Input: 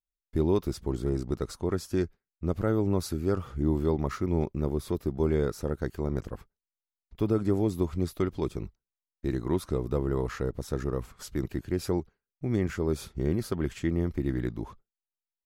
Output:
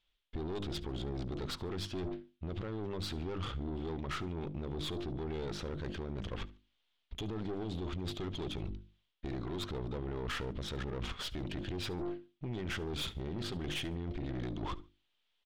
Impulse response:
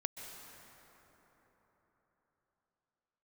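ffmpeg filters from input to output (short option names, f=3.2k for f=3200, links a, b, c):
-filter_complex "[0:a]bandreject=f=50:t=h:w=6,bandreject=f=100:t=h:w=6,bandreject=f=150:t=h:w=6,bandreject=f=200:t=h:w=6,bandreject=f=250:t=h:w=6,bandreject=f=300:t=h:w=6,bandreject=f=350:t=h:w=6,alimiter=level_in=6.5dB:limit=-24dB:level=0:latency=1:release=62,volume=-6.5dB,areverse,acompressor=threshold=-48dB:ratio=5,areverse,lowpass=f=3.3k:t=q:w=4.4,aeval=exprs='(tanh(316*val(0)+0.5)-tanh(0.5))/316':c=same,asplit=2[a][b];[b]aecho=0:1:72|144:0.0794|0.0238[c];[a][c]amix=inputs=2:normalize=0,volume=16dB"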